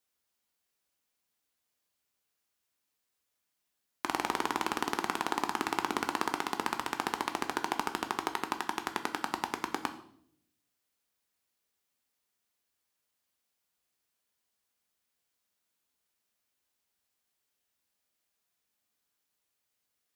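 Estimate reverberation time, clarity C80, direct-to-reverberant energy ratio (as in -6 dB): 0.65 s, 15.5 dB, 6.5 dB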